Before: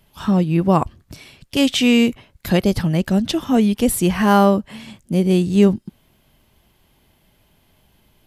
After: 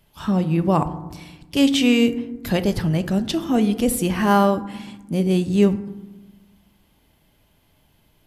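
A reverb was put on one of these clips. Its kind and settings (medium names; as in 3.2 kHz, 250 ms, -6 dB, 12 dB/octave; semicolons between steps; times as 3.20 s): FDN reverb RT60 1.1 s, low-frequency decay 1.55×, high-frequency decay 0.4×, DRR 10 dB; trim -3 dB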